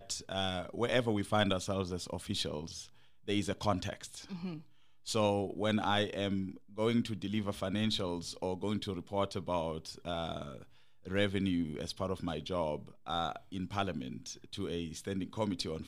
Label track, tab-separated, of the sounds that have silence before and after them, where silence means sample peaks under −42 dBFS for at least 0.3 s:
3.280000	4.600000	sound
5.070000	10.630000	sound